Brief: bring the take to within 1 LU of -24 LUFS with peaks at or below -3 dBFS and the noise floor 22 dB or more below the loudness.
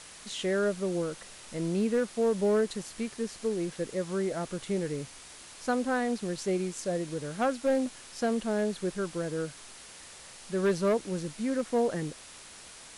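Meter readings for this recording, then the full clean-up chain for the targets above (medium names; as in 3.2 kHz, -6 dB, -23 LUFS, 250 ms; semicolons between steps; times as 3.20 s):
clipped samples 0.6%; clipping level -20.5 dBFS; noise floor -49 dBFS; noise floor target -53 dBFS; loudness -31.0 LUFS; peak level -20.5 dBFS; loudness target -24.0 LUFS
-> clip repair -20.5 dBFS; noise reduction 6 dB, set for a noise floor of -49 dBFS; trim +7 dB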